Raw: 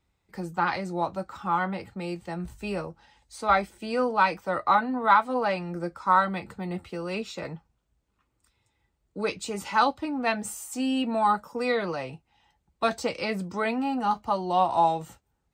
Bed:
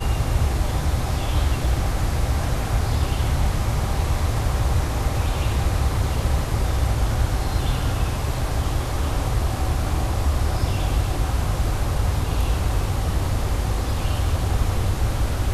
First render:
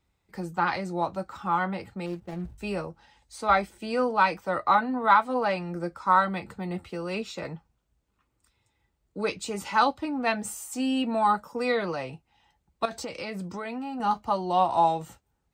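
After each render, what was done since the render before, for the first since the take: 2.06–2.58 s: median filter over 41 samples; 12.85–14.00 s: compression, threshold -31 dBFS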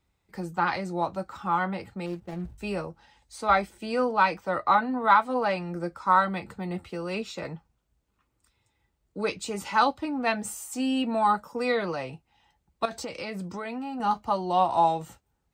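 4.05–4.82 s: peaking EQ 12 kHz -7 dB 0.73 oct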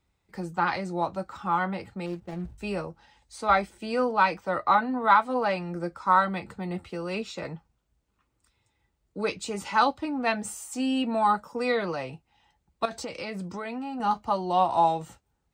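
peaking EQ 13 kHz -8 dB 0.32 oct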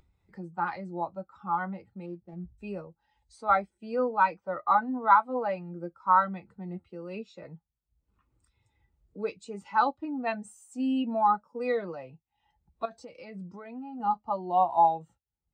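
upward compressor, threshold -34 dBFS; spectral contrast expander 1.5:1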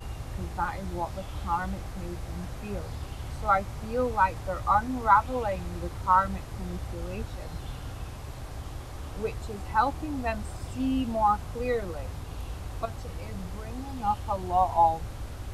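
add bed -15.5 dB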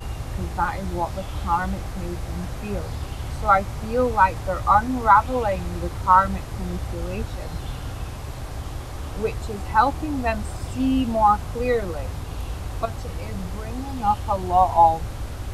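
trim +6.5 dB; peak limiter -3 dBFS, peak gain reduction 2 dB

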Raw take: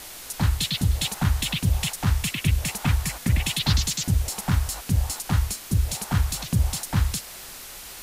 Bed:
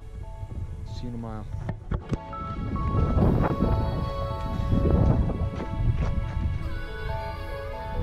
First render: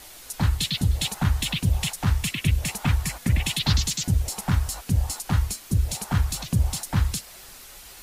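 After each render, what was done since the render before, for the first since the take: noise reduction 6 dB, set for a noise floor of -41 dBFS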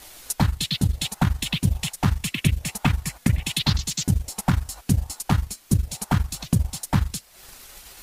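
compression 2:1, threshold -24 dBFS, peak gain reduction 5 dB; transient shaper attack +8 dB, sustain -9 dB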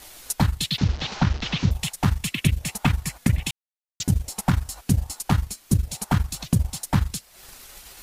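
0.78–1.71 s: one-bit delta coder 32 kbps, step -29 dBFS; 3.51–4.00 s: mute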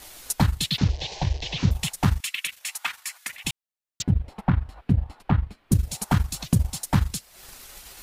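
0.89–1.58 s: static phaser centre 550 Hz, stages 4; 2.20–3.45 s: Chebyshev high-pass 1.5 kHz; 4.02–5.72 s: distance through air 480 m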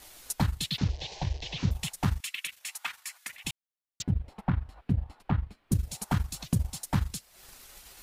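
trim -6.5 dB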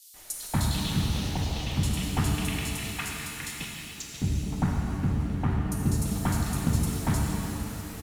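bands offset in time highs, lows 140 ms, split 3.9 kHz; pitch-shifted reverb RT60 3.3 s, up +7 st, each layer -8 dB, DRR -2 dB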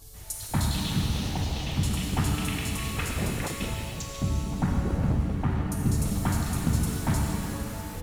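add bed -9 dB

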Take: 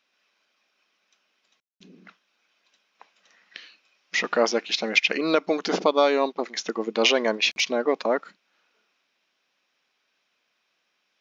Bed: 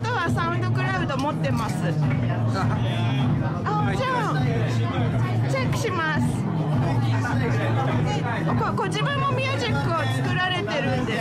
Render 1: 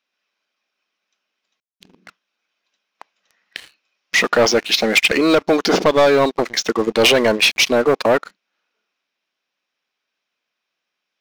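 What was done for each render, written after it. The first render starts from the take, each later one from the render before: waveshaping leveller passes 3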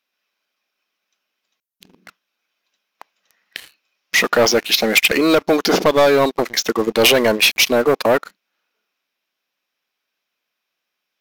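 peaking EQ 14 kHz +13 dB 0.63 oct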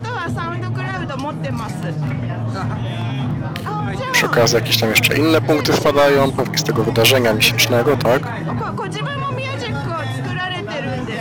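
add bed +0.5 dB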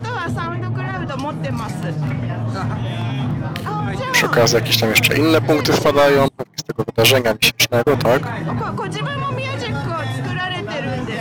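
0.47–1.07 s: treble shelf 3.7 kHz -10.5 dB; 6.28–7.87 s: gate -15 dBFS, range -29 dB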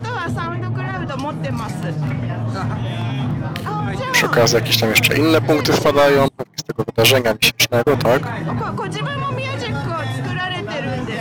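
no audible change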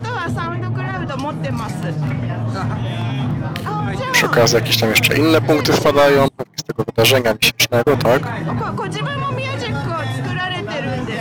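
trim +1 dB; peak limiter -3 dBFS, peak gain reduction 2.5 dB

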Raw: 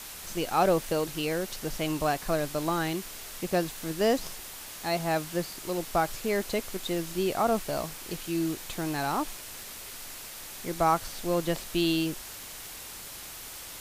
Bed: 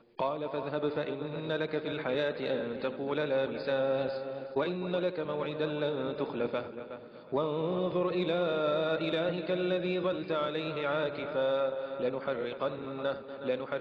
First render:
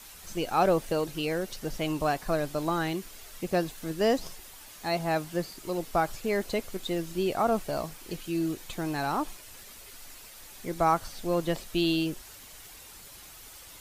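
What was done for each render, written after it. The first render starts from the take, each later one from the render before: noise reduction 8 dB, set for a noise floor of -43 dBFS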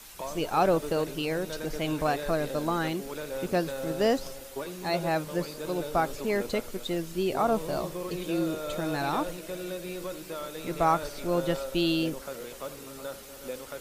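add bed -6 dB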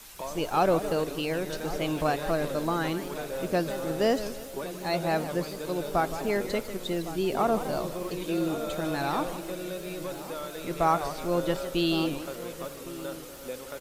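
echo from a far wall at 190 m, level -14 dB; modulated delay 159 ms, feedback 36%, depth 220 cents, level -12 dB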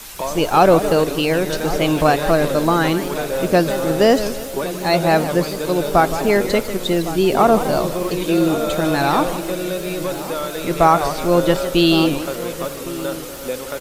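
trim +12 dB; peak limiter -2 dBFS, peak gain reduction 2 dB

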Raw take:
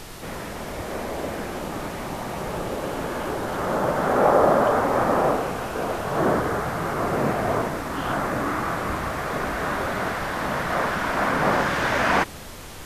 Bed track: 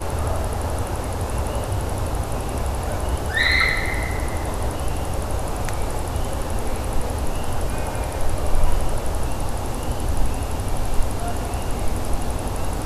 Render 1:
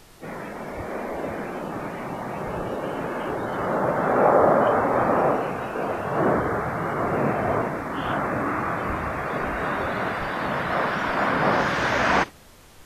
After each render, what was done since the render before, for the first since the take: noise print and reduce 11 dB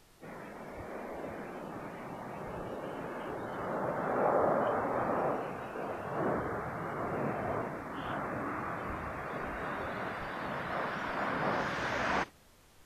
trim -11.5 dB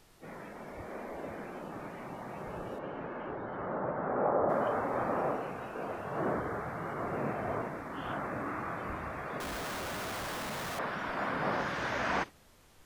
2.78–4.48 s: low-pass 3.2 kHz -> 1.3 kHz; 9.40–10.79 s: Schmitt trigger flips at -51.5 dBFS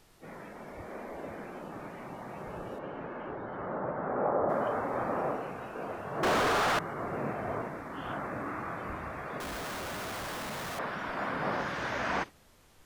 6.23–6.79 s: overdrive pedal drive 40 dB, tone 4.7 kHz, clips at -21 dBFS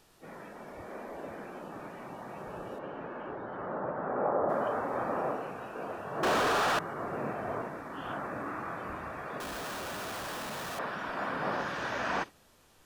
bass shelf 130 Hz -6.5 dB; band-stop 2.1 kHz, Q 12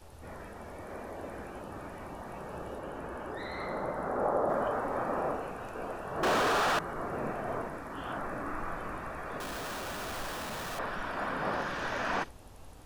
add bed track -27 dB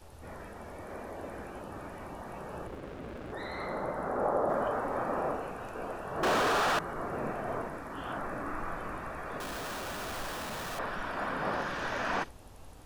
2.67–3.33 s: sliding maximum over 33 samples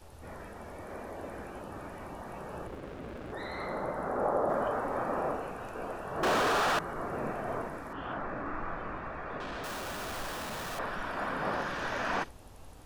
7.93–9.64 s: low-pass 3.6 kHz

